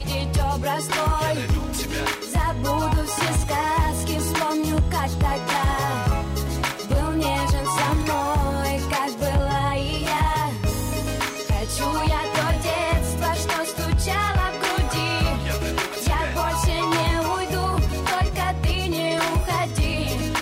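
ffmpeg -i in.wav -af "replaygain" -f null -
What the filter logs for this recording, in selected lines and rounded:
track_gain = +6.3 dB
track_peak = 0.169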